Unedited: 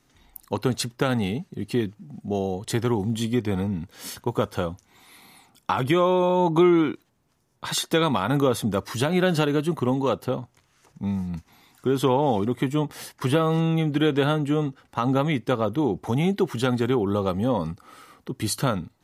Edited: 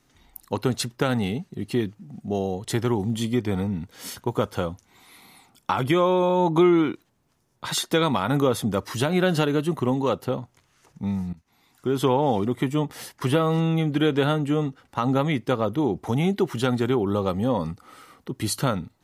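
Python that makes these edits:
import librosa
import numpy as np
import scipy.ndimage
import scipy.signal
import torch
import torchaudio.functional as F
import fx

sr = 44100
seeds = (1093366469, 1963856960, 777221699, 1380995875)

y = fx.edit(x, sr, fx.fade_in_from(start_s=11.33, length_s=0.7, floor_db=-21.0), tone=tone)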